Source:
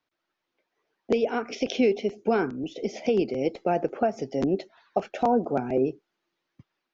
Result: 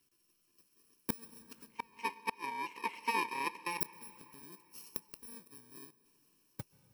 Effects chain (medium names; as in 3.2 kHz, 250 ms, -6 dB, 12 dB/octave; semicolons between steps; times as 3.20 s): bit-reversed sample order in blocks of 64 samples; 1.68–3.81 s: two resonant band-passes 1.4 kHz, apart 1.2 oct; inverted gate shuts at -27 dBFS, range -37 dB; plate-style reverb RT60 3.7 s, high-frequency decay 0.8×, pre-delay 115 ms, DRR 18 dB; trim +8 dB